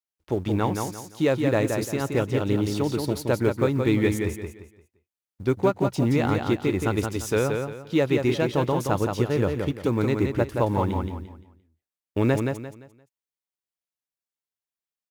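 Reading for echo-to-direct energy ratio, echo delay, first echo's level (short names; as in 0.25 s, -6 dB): -4.5 dB, 0.173 s, -5.0 dB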